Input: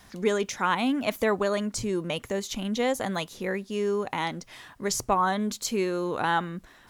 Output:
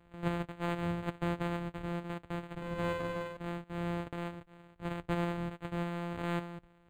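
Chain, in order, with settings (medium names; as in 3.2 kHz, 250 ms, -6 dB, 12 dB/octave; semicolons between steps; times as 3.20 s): sorted samples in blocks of 256 samples; 2.54–3.37 s: flutter echo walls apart 8.3 m, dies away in 0.81 s; decimation joined by straight lines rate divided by 8×; trim -9 dB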